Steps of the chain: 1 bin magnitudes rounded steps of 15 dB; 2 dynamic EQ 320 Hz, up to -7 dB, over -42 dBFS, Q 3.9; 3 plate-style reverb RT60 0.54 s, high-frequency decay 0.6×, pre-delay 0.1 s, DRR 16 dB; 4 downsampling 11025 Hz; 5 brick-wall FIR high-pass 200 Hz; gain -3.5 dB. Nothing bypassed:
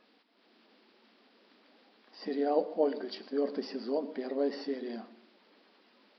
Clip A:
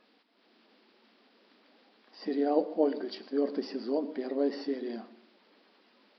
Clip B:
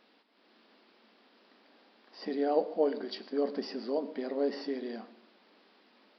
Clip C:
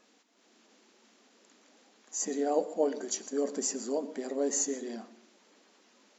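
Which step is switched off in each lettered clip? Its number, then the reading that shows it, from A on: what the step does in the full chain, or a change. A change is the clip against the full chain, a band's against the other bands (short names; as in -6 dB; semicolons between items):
2, momentary loudness spread change -2 LU; 1, momentary loudness spread change -2 LU; 4, 4 kHz band +2.0 dB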